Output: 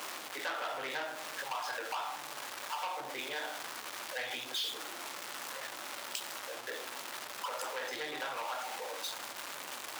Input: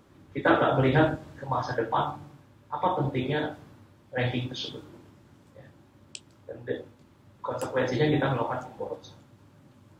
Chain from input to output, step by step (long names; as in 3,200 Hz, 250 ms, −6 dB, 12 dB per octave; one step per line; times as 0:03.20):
converter with a step at zero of −30.5 dBFS
high-pass filter 860 Hz 12 dB per octave
downward compressor 4 to 1, threshold −33 dBFS, peak gain reduction 11.5 dB
saturating transformer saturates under 3,600 Hz